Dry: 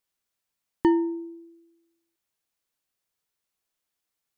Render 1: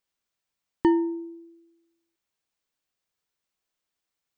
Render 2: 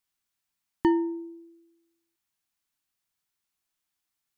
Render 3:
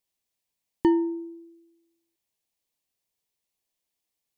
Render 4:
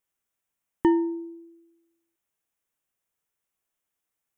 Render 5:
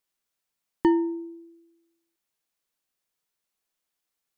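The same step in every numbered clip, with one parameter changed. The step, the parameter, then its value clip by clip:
bell, frequency: 12000, 500, 1400, 4400, 88 Hz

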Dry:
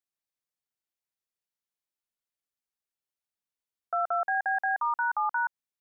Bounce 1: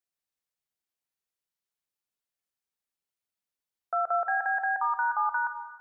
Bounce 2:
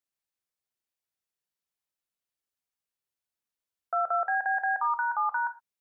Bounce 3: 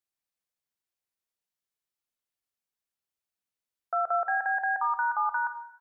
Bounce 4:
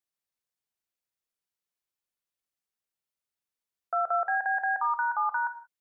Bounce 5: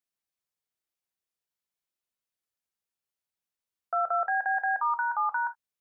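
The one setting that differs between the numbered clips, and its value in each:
non-linear reverb, gate: 530, 140, 340, 210, 90 ms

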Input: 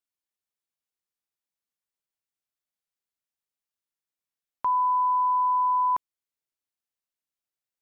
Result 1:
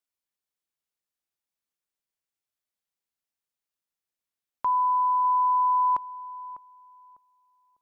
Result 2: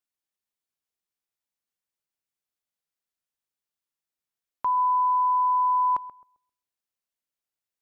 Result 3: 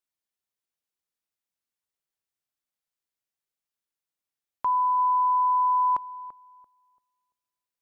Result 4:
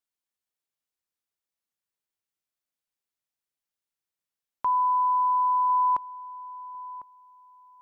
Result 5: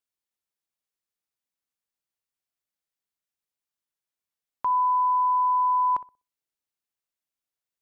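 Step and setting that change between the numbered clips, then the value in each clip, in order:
darkening echo, time: 600, 132, 339, 1051, 62 ms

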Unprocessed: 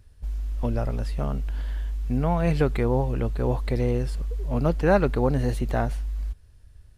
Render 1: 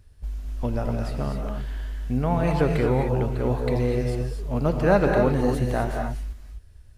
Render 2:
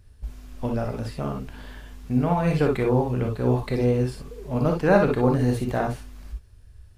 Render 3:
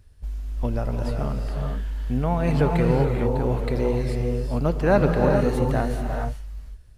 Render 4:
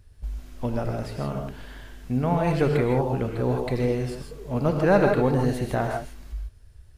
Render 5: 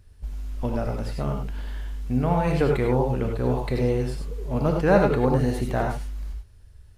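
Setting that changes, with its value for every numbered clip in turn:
non-linear reverb, gate: 280, 80, 460, 180, 120 ms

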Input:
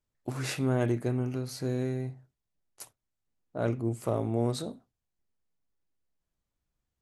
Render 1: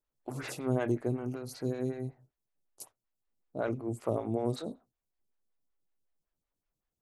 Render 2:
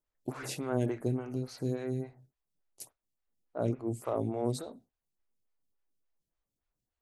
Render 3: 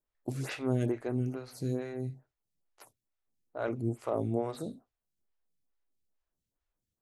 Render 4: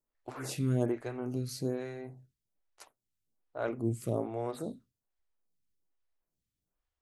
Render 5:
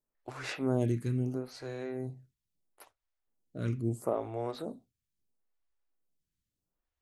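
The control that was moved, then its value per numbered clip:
photocell phaser, rate: 5.3, 3.5, 2.3, 1.2, 0.75 Hz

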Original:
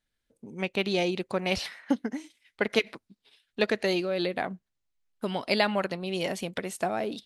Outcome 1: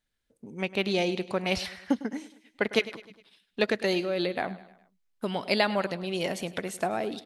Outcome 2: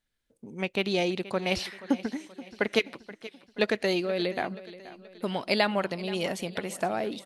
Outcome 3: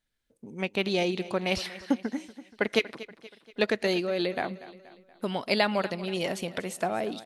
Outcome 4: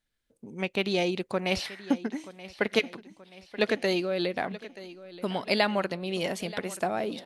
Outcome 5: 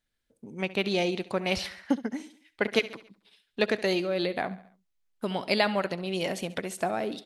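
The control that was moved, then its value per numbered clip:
feedback echo, time: 103, 478, 238, 929, 69 ms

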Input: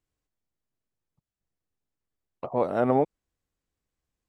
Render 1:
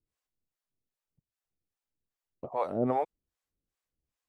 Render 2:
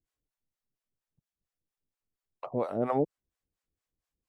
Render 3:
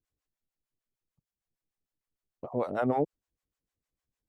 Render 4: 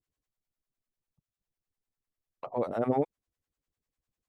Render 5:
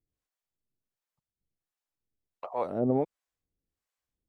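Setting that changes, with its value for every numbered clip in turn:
harmonic tremolo, rate: 2.5, 4.3, 6.6, 10, 1.4 Hz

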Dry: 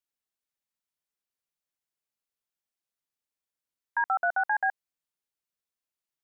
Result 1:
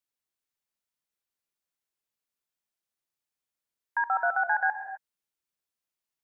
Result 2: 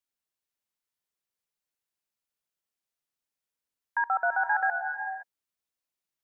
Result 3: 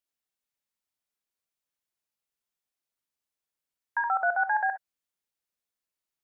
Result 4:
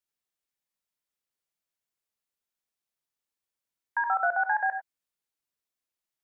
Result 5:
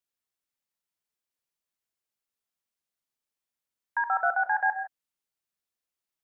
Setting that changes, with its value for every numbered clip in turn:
non-linear reverb, gate: 280, 540, 80, 120, 180 ms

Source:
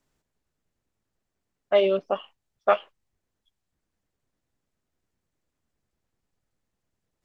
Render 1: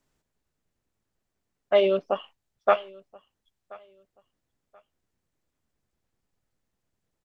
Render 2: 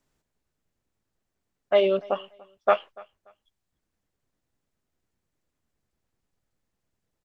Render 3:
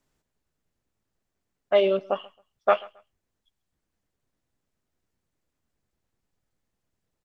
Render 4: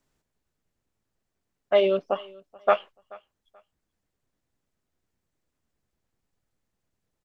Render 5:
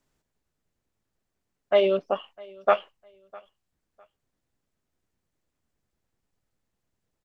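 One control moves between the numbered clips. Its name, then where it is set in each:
feedback echo, time: 1.03, 0.29, 0.135, 0.432, 0.654 s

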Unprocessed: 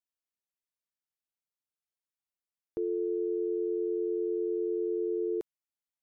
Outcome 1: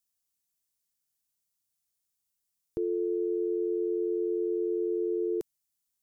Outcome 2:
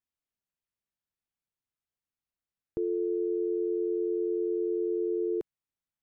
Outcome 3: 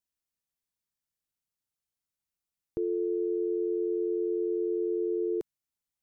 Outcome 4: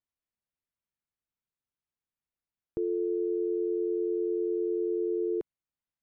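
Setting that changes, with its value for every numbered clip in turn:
tone controls, treble: +14, -6, +4, -14 dB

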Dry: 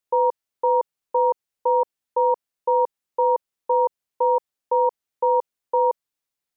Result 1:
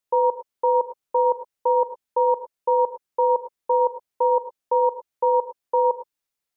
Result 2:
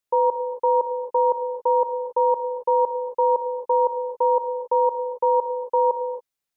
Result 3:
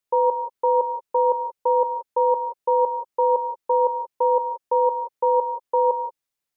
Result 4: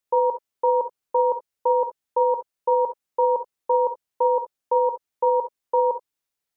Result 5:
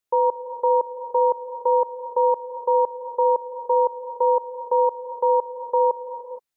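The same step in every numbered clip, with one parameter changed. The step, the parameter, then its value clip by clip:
non-linear reverb, gate: 130, 300, 200, 90, 490 ms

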